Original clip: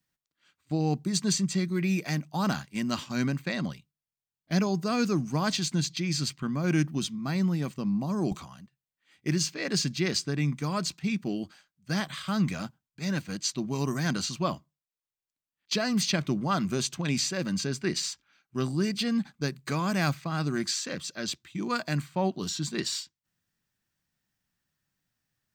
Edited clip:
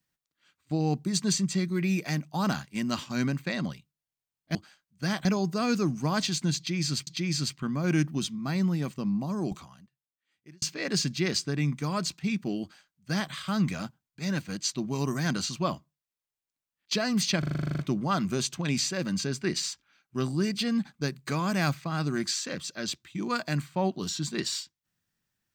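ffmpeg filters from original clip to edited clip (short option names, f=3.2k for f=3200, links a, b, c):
-filter_complex "[0:a]asplit=15[a][b][c][d][e][f][g][h][i][j][k][l][m][n][o];[a]atrim=end=4.552[p];[b]atrim=start=11.418:end=12.122[q];[c]atrim=start=4.548:end=6.372[r];[d]atrim=start=5.868:end=9.42,asetpts=PTS-STARTPTS,afade=t=out:st=1.982:d=1.57[s];[e]atrim=start=9.42:end=16.232,asetpts=PTS-STARTPTS,afade=t=in:d=0.004:c=hsin[t];[f]atrim=start=16.188:end=16.232[u];[g]atrim=start=16.188:end=16.232[v];[h]atrim=start=16.188:end=16.232[w];[i]atrim=start=16.188:end=16.232[x];[j]atrim=start=16.188:end=16.232[y];[k]atrim=start=16.188:end=16.232[z];[l]atrim=start=16.188:end=16.232[aa];[m]atrim=start=16.188:end=16.232[ab];[n]atrim=start=16.188:end=16.232[ac];[o]atrim=start=16.188[ad];[p][q]acrossfade=d=0.004:c1=hsin:c2=hsin[ae];[ae][r]acrossfade=d=0.004:c1=hsin:c2=hsin[af];[s][t]concat=n=2:v=0:a=1[ag];[af][ag]acrossfade=d=0.004:c1=hsin:c2=hsin[ah];[ah][u]acrossfade=d=0.004:c1=hsin:c2=hsin[ai];[ai][v]acrossfade=d=0.004:c1=hsin:c2=hsin[aj];[aj][w]acrossfade=d=0.004:c1=hsin:c2=hsin[ak];[ak][x]acrossfade=d=0.004:c1=hsin:c2=hsin[al];[al][y]acrossfade=d=0.004:c1=hsin:c2=hsin[am];[am][z]acrossfade=d=0.004:c1=hsin:c2=hsin[an];[an][aa]acrossfade=d=0.004:c1=hsin:c2=hsin[ao];[ao][ab]acrossfade=d=0.004:c1=hsin:c2=hsin[ap];[ap][ac]acrossfade=d=0.004:c1=hsin:c2=hsin[aq];[aq][ad]acrossfade=d=0.004:c1=hsin:c2=hsin"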